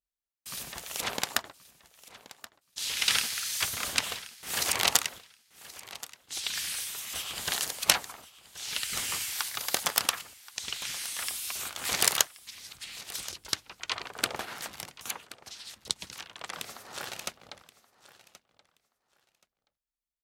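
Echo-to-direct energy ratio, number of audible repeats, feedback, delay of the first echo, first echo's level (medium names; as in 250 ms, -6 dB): -18.0 dB, 2, 19%, 1077 ms, -18.0 dB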